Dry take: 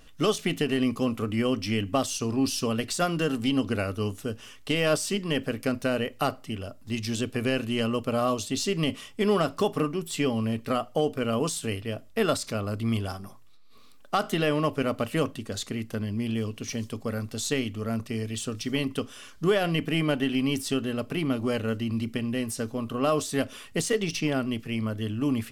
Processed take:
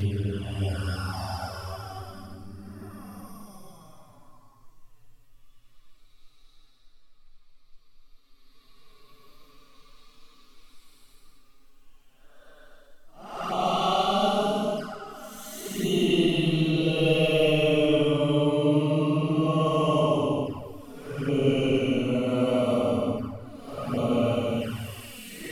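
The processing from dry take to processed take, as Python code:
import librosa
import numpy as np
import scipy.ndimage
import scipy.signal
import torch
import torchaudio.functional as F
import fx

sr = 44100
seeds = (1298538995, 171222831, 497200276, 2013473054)

y = fx.paulstretch(x, sr, seeds[0], factor=12.0, window_s=0.1, from_s=13.0)
y = fx.env_flanger(y, sr, rest_ms=8.8, full_db=-25.0)
y = F.gain(torch.from_numpy(y), 3.0).numpy()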